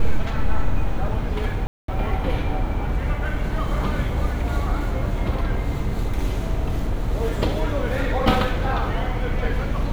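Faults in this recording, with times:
0:01.67–0:01.88: drop-out 213 ms

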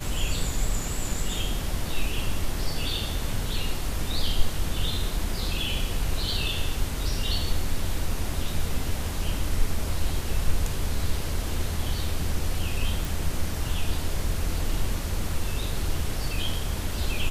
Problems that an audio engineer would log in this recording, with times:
0:13.05: click

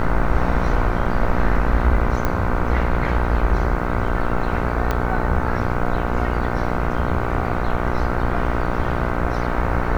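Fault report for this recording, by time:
mains buzz 60 Hz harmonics 26 −24 dBFS
0:02.25: click −8 dBFS
0:04.91: click −8 dBFS

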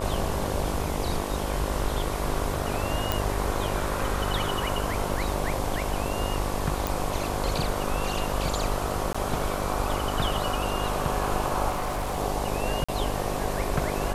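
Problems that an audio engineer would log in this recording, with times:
mains buzz 50 Hz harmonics 23 −32 dBFS
0:03.12: click
0:06.87: click
0:09.13–0:09.14: drop-out 15 ms
0:11.69–0:12.18: clipping −25 dBFS
0:12.84–0:12.88: drop-out 45 ms

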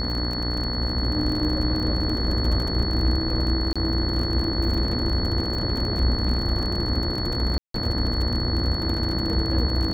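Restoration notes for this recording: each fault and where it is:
mains buzz 60 Hz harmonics 34 −29 dBFS
surface crackle 31 per second −28 dBFS
whistle 4,400 Hz −29 dBFS
0:03.73–0:03.76: drop-out 26 ms
0:07.58–0:07.74: drop-out 163 ms

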